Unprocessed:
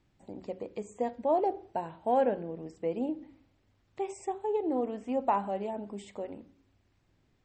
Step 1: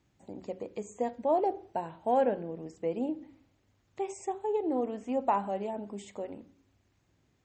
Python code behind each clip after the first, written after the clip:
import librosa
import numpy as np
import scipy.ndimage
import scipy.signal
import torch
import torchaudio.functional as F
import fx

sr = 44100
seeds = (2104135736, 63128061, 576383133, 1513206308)

y = scipy.signal.sosfilt(scipy.signal.butter(2, 51.0, 'highpass', fs=sr, output='sos'), x)
y = fx.peak_eq(y, sr, hz=6600.0, db=8.5, octaves=0.21)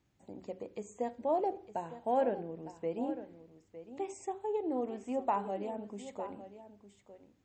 y = x + 10.0 ** (-13.0 / 20.0) * np.pad(x, (int(908 * sr / 1000.0), 0))[:len(x)]
y = y * librosa.db_to_amplitude(-4.0)